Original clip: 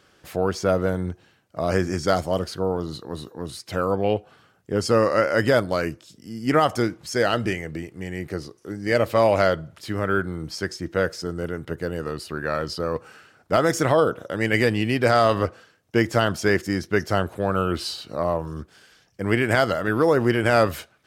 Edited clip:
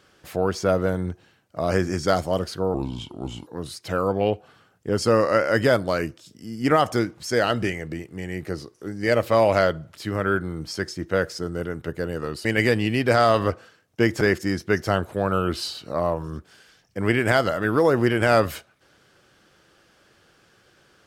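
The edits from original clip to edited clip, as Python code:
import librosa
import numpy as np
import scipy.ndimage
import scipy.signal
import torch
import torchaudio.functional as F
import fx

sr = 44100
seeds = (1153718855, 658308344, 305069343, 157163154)

y = fx.edit(x, sr, fx.speed_span(start_s=2.74, length_s=0.56, speed=0.77),
    fx.cut(start_s=12.28, length_s=2.12),
    fx.cut(start_s=16.16, length_s=0.28), tone=tone)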